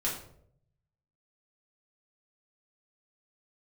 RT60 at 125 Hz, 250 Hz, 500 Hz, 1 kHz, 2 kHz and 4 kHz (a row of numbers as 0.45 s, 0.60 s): 1.3 s, 0.75 s, 0.80 s, 0.55 s, 0.45 s, 0.40 s